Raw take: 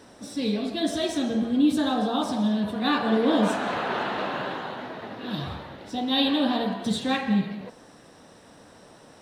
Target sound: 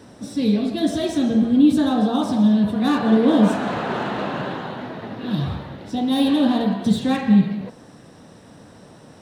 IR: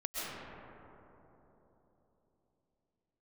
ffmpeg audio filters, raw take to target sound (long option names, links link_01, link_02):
-filter_complex "[0:a]equalizer=frequency=130:width_type=o:width=2.4:gain=9.5,acrossover=split=1200[link_01][link_02];[link_02]asoftclip=type=tanh:threshold=-29dB[link_03];[link_01][link_03]amix=inputs=2:normalize=0,volume=1.5dB"